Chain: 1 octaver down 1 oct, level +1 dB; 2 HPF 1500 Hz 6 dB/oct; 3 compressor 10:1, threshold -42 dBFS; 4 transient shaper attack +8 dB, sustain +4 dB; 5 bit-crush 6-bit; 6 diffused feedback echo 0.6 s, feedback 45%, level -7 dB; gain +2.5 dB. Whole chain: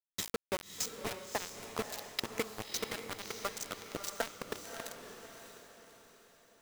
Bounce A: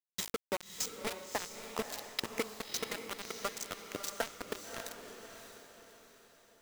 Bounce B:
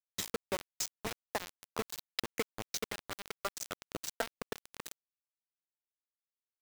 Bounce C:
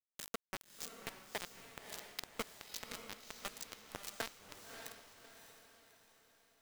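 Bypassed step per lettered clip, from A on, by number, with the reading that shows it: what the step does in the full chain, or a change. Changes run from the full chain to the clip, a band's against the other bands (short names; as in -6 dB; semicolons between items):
1, 125 Hz band -3.0 dB; 6, echo-to-direct -6.0 dB to none; 4, 2 kHz band +3.0 dB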